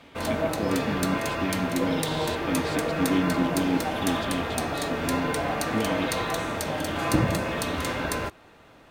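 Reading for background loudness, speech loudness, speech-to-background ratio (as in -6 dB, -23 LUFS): -28.0 LUFS, -30.5 LUFS, -2.5 dB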